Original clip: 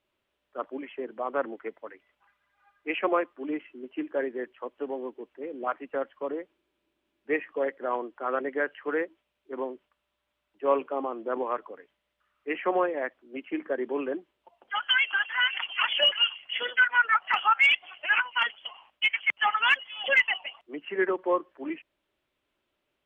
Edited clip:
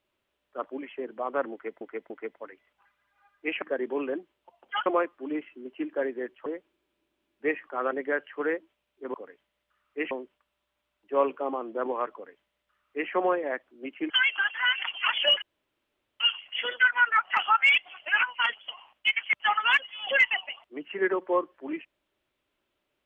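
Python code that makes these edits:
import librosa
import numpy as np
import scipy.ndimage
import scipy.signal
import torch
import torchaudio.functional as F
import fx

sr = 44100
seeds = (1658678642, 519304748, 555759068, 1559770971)

y = fx.edit(x, sr, fx.repeat(start_s=1.52, length_s=0.29, count=3),
    fx.cut(start_s=4.64, length_s=1.67),
    fx.cut(start_s=7.54, length_s=0.63),
    fx.duplicate(start_s=11.64, length_s=0.97, to_s=9.62),
    fx.move(start_s=13.61, length_s=1.24, to_s=3.04),
    fx.insert_room_tone(at_s=16.17, length_s=0.78), tone=tone)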